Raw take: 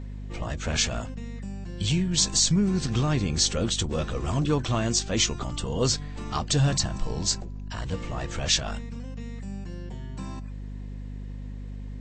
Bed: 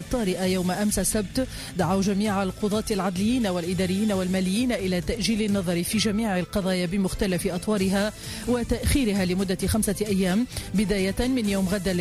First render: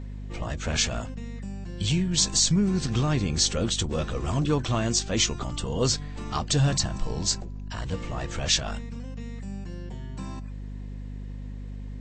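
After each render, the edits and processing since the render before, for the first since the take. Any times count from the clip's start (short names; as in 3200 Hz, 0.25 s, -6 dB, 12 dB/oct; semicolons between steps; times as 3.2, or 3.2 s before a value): nothing audible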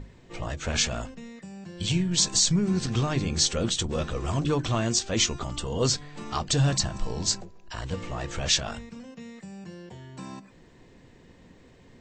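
notches 50/100/150/200/250/300 Hz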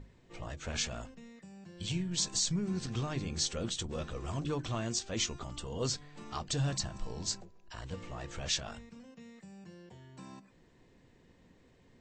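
gain -9.5 dB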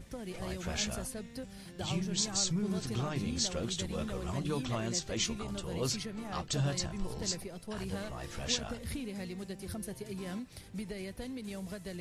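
add bed -17.5 dB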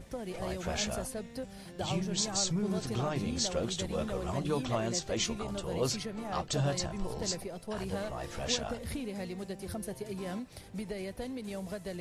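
bell 650 Hz +6.5 dB 1.5 oct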